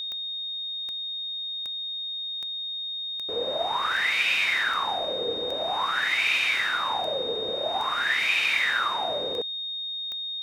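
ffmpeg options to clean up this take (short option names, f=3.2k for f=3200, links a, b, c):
-af "adeclick=t=4,bandreject=f=3.7k:w=30"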